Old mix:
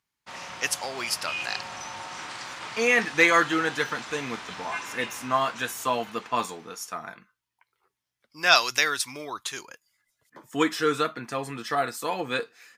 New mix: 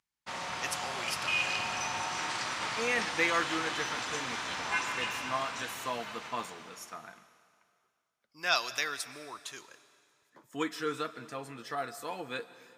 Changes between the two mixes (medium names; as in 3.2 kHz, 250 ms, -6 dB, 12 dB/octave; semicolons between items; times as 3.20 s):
speech -10.5 dB; reverb: on, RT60 2.2 s